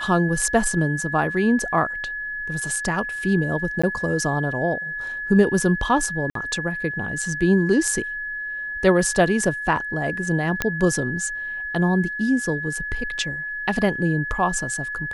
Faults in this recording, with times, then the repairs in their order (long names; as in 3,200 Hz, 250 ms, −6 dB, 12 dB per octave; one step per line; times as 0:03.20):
whistle 1,700 Hz −27 dBFS
0:03.82–0:03.83: drop-out 15 ms
0:06.30–0:06.35: drop-out 53 ms
0:10.62: click −5 dBFS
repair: click removal
notch filter 1,700 Hz, Q 30
repair the gap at 0:03.82, 15 ms
repair the gap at 0:06.30, 53 ms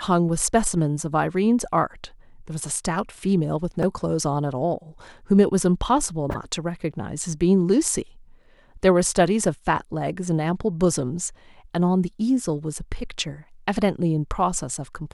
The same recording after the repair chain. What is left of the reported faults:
0:10.62: click